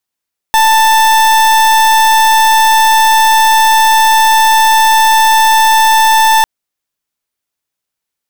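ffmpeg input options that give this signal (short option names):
-f lavfi -i "aevalsrc='0.422*(2*lt(mod(885*t,1),0.38)-1)':d=5.9:s=44100"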